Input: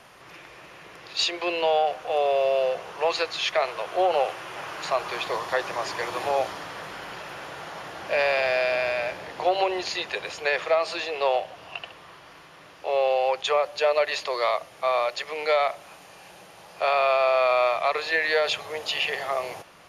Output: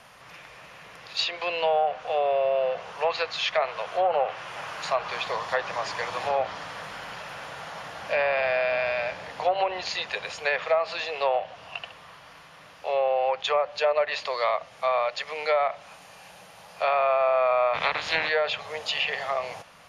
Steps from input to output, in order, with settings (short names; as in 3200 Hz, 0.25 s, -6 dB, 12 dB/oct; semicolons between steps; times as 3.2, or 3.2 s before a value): 17.73–18.28 spectral limiter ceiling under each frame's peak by 23 dB; treble ducked by the level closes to 1800 Hz, closed at -17.5 dBFS; bell 350 Hz -13.5 dB 0.4 oct